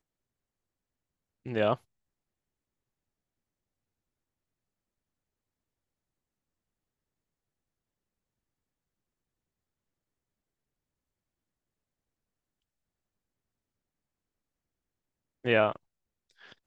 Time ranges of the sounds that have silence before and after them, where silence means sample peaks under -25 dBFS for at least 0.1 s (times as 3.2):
1.55–1.73
15.46–15.71